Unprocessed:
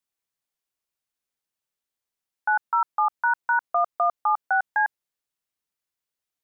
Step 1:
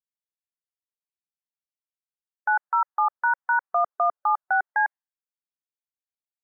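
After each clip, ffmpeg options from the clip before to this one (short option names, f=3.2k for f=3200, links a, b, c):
-af "afftdn=nr=20:nf=-48"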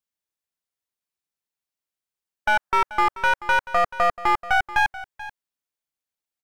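-af "aeval=exprs='clip(val(0),-1,0.0447)':c=same,aecho=1:1:434:0.158,volume=5dB"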